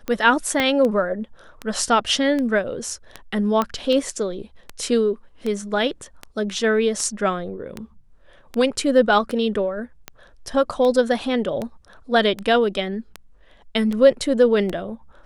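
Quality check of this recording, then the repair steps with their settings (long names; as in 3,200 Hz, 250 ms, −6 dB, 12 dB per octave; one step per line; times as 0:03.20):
scratch tick 78 rpm −14 dBFS
0:00.60: click −7 dBFS
0:03.62: click −9 dBFS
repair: click removal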